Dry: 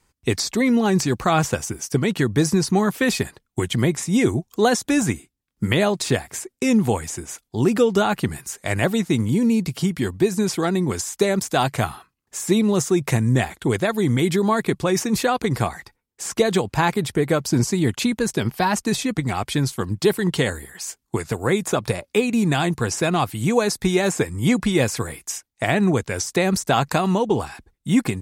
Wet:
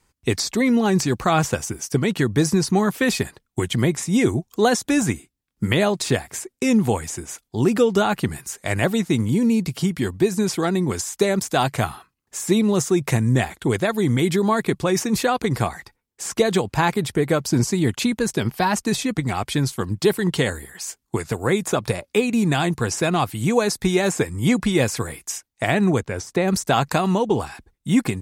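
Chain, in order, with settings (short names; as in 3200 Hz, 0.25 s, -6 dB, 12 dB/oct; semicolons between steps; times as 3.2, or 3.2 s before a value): 26–26.48 high shelf 2600 Hz -10.5 dB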